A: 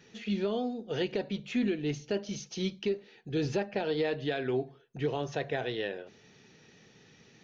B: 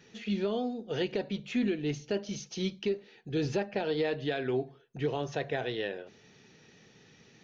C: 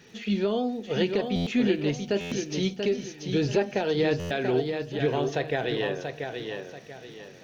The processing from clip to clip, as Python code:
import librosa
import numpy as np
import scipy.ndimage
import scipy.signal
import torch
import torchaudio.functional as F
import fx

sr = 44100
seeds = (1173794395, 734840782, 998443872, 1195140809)

y1 = x
y2 = fx.dmg_crackle(y1, sr, seeds[0], per_s=290.0, level_db=-58.0)
y2 = fx.echo_feedback(y2, sr, ms=685, feedback_pct=33, wet_db=-6.0)
y2 = fx.buffer_glitch(y2, sr, at_s=(1.35, 2.2, 4.19), block=512, repeats=9)
y2 = F.gain(torch.from_numpy(y2), 5.0).numpy()